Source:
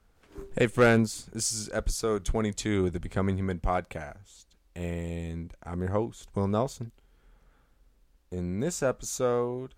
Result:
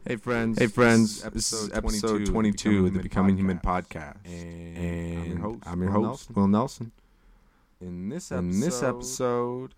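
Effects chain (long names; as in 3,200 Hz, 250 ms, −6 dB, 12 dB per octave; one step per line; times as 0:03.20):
thirty-one-band graphic EQ 200 Hz +10 dB, 315 Hz +4 dB, 630 Hz −4 dB, 1,000 Hz +8 dB, 2,000 Hz +4 dB, 5,000 Hz +5 dB
on a send: backwards echo 509 ms −7.5 dB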